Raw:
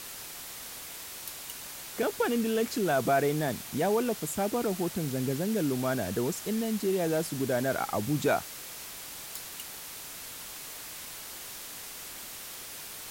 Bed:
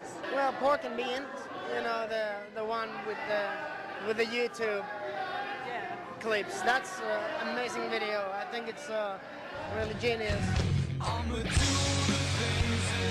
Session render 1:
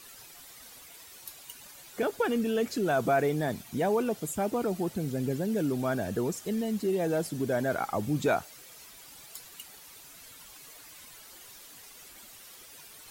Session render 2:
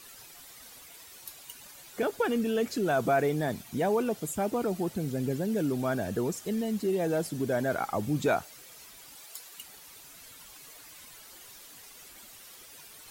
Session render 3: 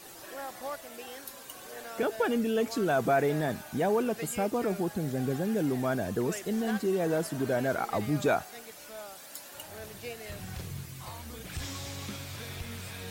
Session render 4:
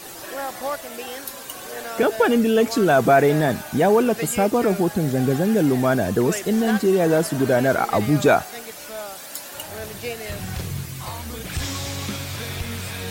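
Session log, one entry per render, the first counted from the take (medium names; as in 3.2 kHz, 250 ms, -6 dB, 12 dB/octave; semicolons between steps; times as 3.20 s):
noise reduction 11 dB, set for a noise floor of -43 dBFS
9.15–9.58 s: tone controls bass -13 dB, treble +1 dB
add bed -11 dB
trim +10.5 dB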